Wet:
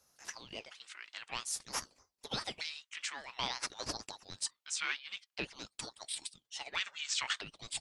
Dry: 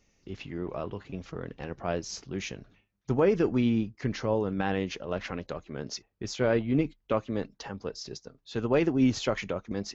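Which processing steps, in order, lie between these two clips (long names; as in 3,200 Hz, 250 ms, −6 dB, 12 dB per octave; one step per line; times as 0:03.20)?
gliding playback speed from 142% → 113%
inverse Chebyshev high-pass filter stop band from 360 Hz, stop band 70 dB
ring modulator whose carrier an LFO sweeps 1,400 Hz, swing 80%, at 0.5 Hz
level +5 dB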